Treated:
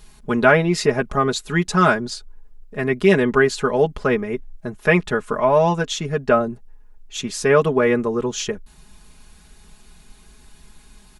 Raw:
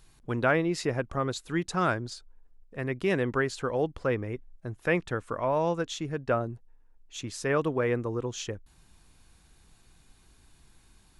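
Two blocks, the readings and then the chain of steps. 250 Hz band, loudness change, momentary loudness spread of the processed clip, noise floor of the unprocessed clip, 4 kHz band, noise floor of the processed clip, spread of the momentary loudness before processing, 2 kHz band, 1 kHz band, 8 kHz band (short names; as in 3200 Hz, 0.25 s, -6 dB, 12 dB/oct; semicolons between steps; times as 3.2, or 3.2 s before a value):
+10.0 dB, +10.5 dB, 13 LU, -61 dBFS, +11.0 dB, -49 dBFS, 13 LU, +11.0 dB, +10.5 dB, +11.0 dB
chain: comb 4.8 ms, depth 85%; gain +8.5 dB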